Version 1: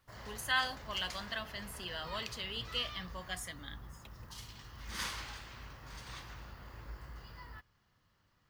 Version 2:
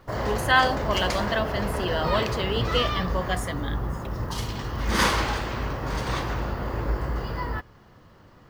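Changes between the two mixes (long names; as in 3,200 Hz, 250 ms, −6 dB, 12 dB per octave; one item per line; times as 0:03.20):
background +6.5 dB
master: remove guitar amp tone stack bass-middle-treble 5-5-5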